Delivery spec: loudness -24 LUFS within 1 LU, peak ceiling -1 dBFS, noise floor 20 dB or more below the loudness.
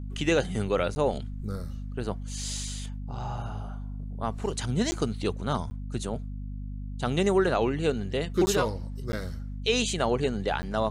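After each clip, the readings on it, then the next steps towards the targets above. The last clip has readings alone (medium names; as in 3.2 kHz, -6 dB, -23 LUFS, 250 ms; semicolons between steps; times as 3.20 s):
dropouts 6; longest dropout 10 ms; hum 50 Hz; highest harmonic 250 Hz; hum level -33 dBFS; loudness -29.5 LUFS; peak level -13.0 dBFS; loudness target -24.0 LUFS
-> interpolate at 0.95/4.91/5.70/8.46/9.12/10.62 s, 10 ms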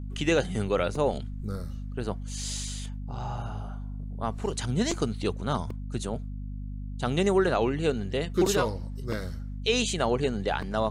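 dropouts 0; hum 50 Hz; highest harmonic 250 Hz; hum level -33 dBFS
-> hum notches 50/100/150/200/250 Hz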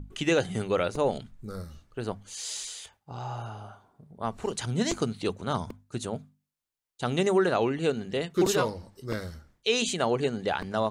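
hum not found; loudness -29.5 LUFS; peak level -13.0 dBFS; loudness target -24.0 LUFS
-> trim +5.5 dB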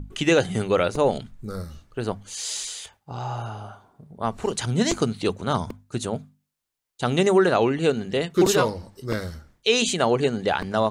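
loudness -24.0 LUFS; peak level -7.5 dBFS; noise floor -78 dBFS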